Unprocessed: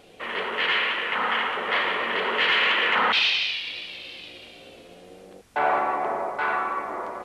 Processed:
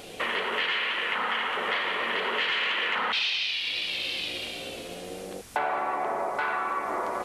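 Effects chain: high shelf 4400 Hz +8.5 dB; compressor 6:1, threshold -34 dBFS, peak gain reduction 16.5 dB; gain +7.5 dB

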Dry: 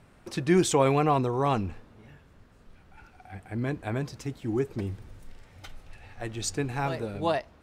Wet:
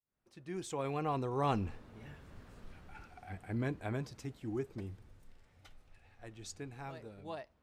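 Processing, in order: opening faded in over 1.85 s; Doppler pass-by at 2.48, 5 m/s, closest 2.5 m; gain +2.5 dB

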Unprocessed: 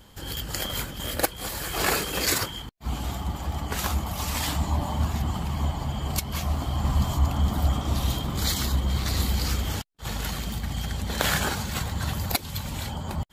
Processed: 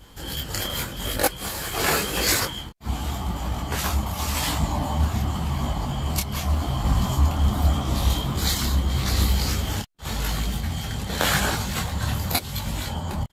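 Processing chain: in parallel at -6 dB: short-mantissa float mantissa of 2-bit; on the sum: downsampling 32000 Hz; detuned doubles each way 30 cents; gain +3 dB

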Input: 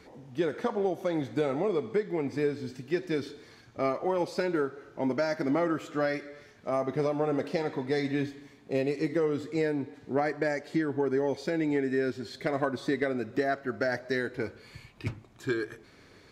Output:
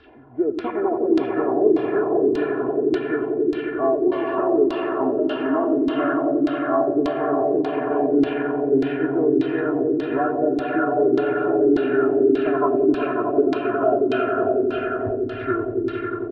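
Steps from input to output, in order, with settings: nonlinear frequency compression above 1000 Hz 1.5:1; on a send: swelling echo 90 ms, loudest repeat 5, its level -7 dB; on the sum: LFO low-pass saw down 1.7 Hz 290–4100 Hz; comb 2.9 ms, depth 84%

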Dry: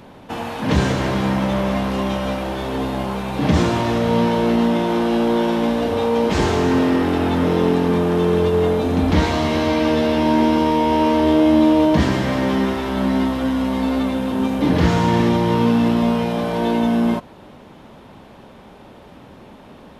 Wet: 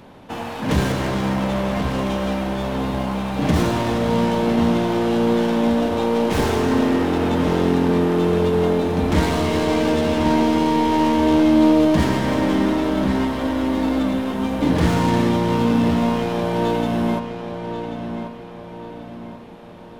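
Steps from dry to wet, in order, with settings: tracing distortion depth 0.093 ms; on a send: darkening echo 1.087 s, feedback 43%, low-pass 4400 Hz, level -8 dB; on the sum: gain -2 dB

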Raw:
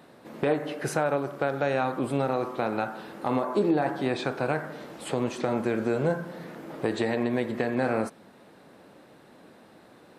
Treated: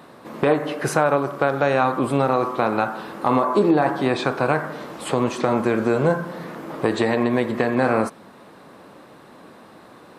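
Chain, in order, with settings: bell 1100 Hz +7 dB 0.43 oct; gain +6.5 dB

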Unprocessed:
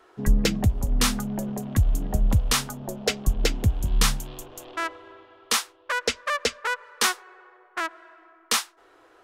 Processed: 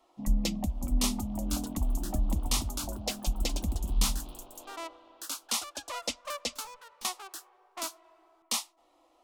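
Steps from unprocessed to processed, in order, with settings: fixed phaser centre 420 Hz, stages 6; 6.54–7.05 tube stage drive 39 dB, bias 0.45; echoes that change speed 0.659 s, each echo +3 st, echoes 2, each echo -6 dB; gain -5.5 dB

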